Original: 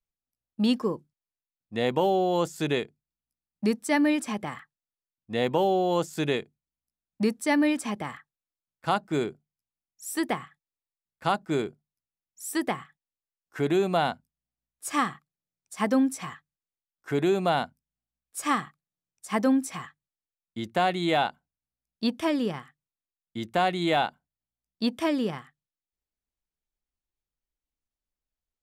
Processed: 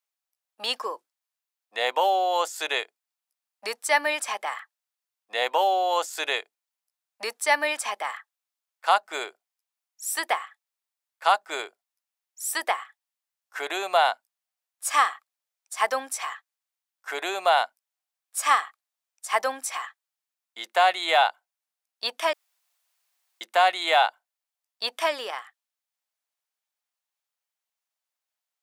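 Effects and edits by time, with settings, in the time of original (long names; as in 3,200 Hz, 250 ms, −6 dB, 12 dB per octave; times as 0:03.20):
0:22.33–0:23.41: fill with room tone
whole clip: high-pass filter 640 Hz 24 dB per octave; level +6.5 dB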